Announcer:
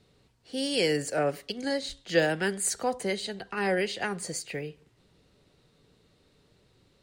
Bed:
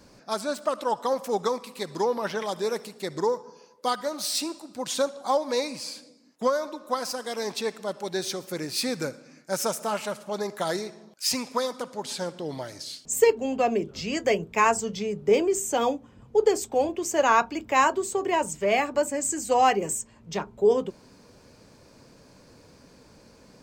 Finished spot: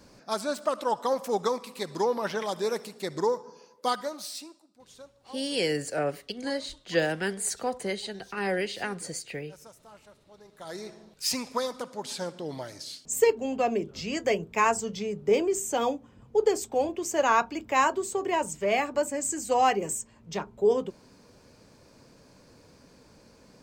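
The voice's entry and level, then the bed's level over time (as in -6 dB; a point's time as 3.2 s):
4.80 s, -1.5 dB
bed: 3.97 s -1 dB
4.8 s -23.5 dB
10.44 s -23.5 dB
10.91 s -2.5 dB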